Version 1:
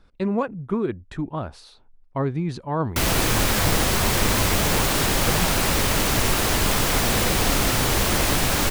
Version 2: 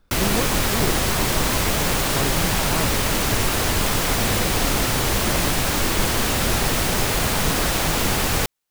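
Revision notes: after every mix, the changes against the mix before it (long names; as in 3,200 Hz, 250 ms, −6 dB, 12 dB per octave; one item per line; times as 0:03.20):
speech −4.0 dB
background: entry −2.85 s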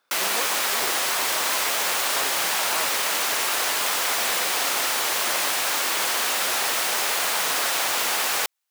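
master: add high-pass filter 720 Hz 12 dB per octave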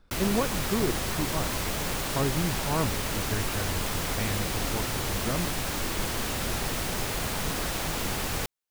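background −9.5 dB
master: remove high-pass filter 720 Hz 12 dB per octave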